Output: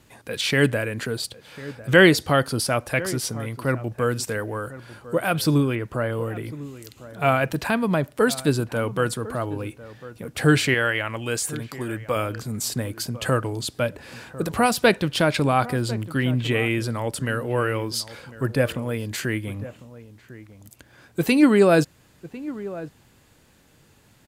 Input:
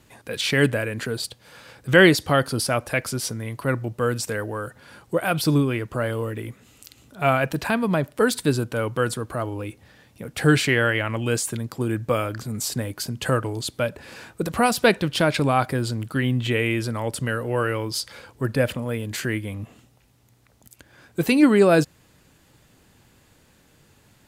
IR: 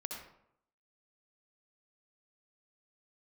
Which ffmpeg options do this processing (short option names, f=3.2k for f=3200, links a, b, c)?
-filter_complex "[0:a]asettb=1/sr,asplit=3[a][b][c];[a]atrim=end=5.754[d];[b]atrim=start=5.75:end=6.44,asetpts=PTS-STARTPTS,afade=t=in:d=0.004:c=qsin,afade=t=out:st=0.686:d=0.004:c=qsin,acrossover=split=2700[e][f];[f]acompressor=threshold=-49dB:ratio=4:attack=1:release=60[g];[e][g]amix=inputs=2:normalize=0[h];[c]atrim=start=6.436[i];[d][h]acrossfade=d=0.004:c1=hsin:c2=qsin[j];[j][i]acrossfade=d=0.004:c1=qsin:c2=hsin,asettb=1/sr,asplit=3[k][l][m];[k]atrim=end=10.744[n];[l]atrim=start=10.74:end=12.16,asetpts=PTS-STARTPTS,afade=t=in:d=0.004:c=qsin,afade=t=out:st=1.416:d=0.004:c=qsin,equalizer=f=160:w=0.4:g=-6.5[o];[m]atrim=start=12.156[p];[n][o]acrossfade=d=0.004:c1=hsin:c2=qsin[q];[q][p]acrossfade=d=0.004:c1=qsin:c2=hsin,asplit=2[r][s];[s]adelay=1050,volume=-16dB,highshelf=f=4k:g=-23.6[t];[r][t]amix=inputs=2:normalize=0"